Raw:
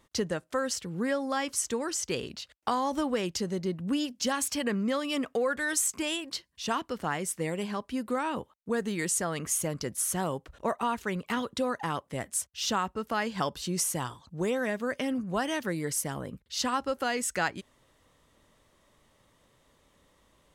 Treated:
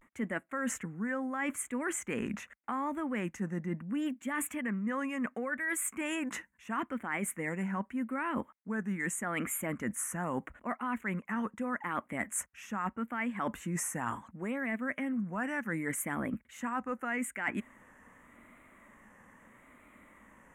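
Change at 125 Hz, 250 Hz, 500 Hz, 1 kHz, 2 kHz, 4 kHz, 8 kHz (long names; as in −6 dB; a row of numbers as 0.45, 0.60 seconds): −3.5, −2.0, −8.5, −5.0, −1.0, −16.5, −7.5 decibels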